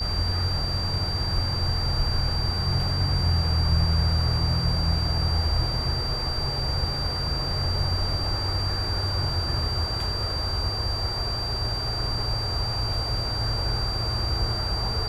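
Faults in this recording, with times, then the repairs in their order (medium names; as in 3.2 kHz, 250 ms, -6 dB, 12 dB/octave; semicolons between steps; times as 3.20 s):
whine 4.7 kHz -29 dBFS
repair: band-stop 4.7 kHz, Q 30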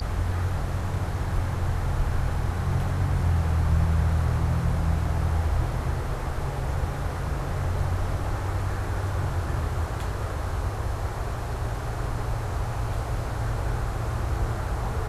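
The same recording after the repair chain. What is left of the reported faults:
nothing left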